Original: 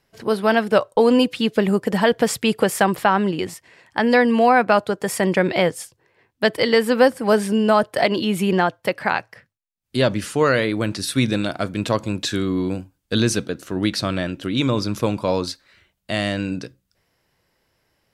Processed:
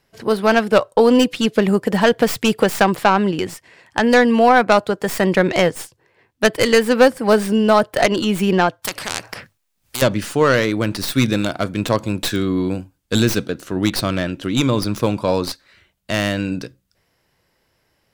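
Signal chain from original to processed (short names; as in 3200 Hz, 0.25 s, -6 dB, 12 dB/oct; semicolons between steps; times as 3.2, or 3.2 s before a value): tracing distortion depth 0.11 ms; 8.82–10.02 spectral compressor 4:1; gain +2.5 dB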